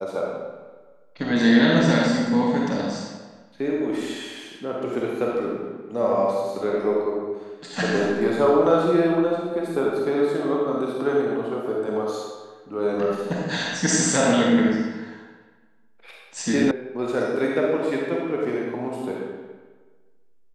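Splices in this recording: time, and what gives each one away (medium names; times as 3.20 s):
16.71 s: sound stops dead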